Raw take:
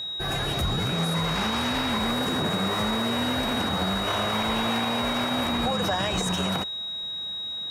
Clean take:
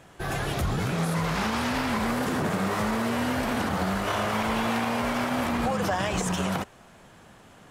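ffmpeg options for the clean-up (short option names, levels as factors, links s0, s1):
-af "bandreject=f=3800:w=30"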